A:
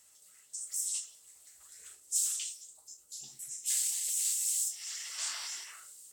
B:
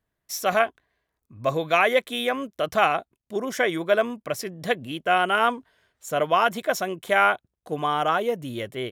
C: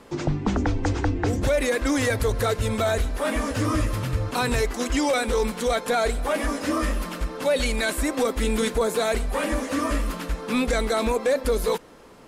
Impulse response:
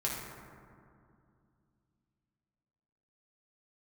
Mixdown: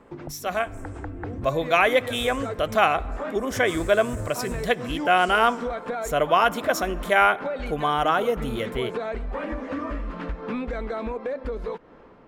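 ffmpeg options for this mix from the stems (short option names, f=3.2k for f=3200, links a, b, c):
-filter_complex "[0:a]volume=-20dB[a];[1:a]volume=-6.5dB,asplit=3[b][c][d];[c]volume=-20.5dB[e];[2:a]lowpass=2k,volume=-3.5dB[f];[d]apad=whole_len=541544[g];[f][g]sidechaincompress=threshold=-45dB:ratio=8:attack=16:release=130[h];[a][h]amix=inputs=2:normalize=0,acompressor=threshold=-35dB:ratio=6,volume=0dB[i];[3:a]atrim=start_sample=2205[j];[e][j]afir=irnorm=-1:irlink=0[k];[b][i][k]amix=inputs=3:normalize=0,dynaudnorm=f=830:g=3:m=7.5dB"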